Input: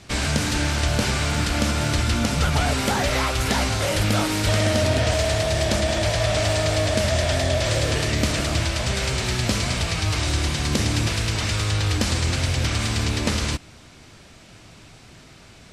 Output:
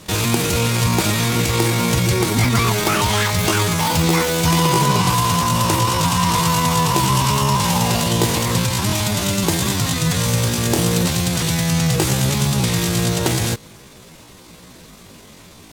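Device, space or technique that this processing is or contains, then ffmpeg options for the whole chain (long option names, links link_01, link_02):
chipmunk voice: -af "asetrate=70004,aresample=44100,atempo=0.629961,volume=4.5dB"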